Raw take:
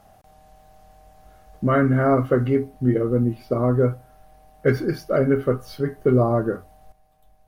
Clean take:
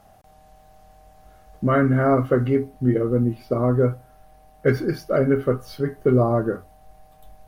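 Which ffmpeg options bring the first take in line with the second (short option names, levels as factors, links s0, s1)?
-af "asetnsamples=n=441:p=0,asendcmd='6.92 volume volume 10.5dB',volume=1"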